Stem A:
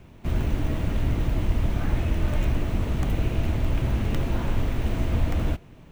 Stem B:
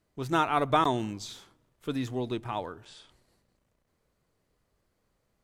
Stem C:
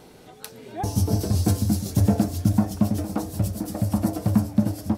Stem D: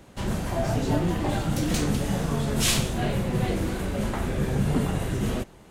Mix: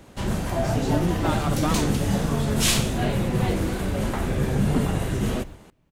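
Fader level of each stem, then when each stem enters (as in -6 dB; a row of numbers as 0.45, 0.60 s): -17.5, -5.0, -12.5, +2.0 dB; 0.00, 0.90, 0.05, 0.00 s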